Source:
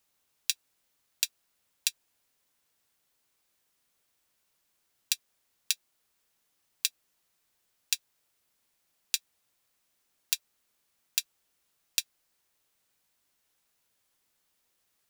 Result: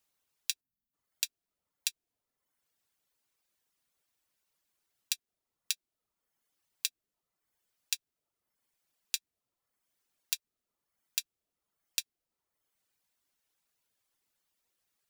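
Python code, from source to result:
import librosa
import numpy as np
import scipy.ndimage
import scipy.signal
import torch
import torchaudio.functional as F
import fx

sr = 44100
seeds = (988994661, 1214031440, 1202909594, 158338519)

y = fx.dereverb_blind(x, sr, rt60_s=0.81)
y = fx.spec_erase(y, sr, start_s=0.61, length_s=0.32, low_hz=300.0, high_hz=11000.0)
y = y * librosa.db_to_amplitude(-4.0)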